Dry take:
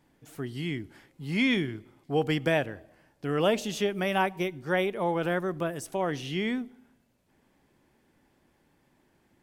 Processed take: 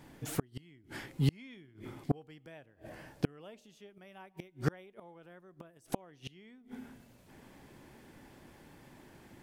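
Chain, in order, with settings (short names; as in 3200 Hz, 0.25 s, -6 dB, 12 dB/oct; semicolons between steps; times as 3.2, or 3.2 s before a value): bell 120 Hz +3 dB 0.43 oct; flipped gate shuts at -26 dBFS, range -37 dB; gain +10.5 dB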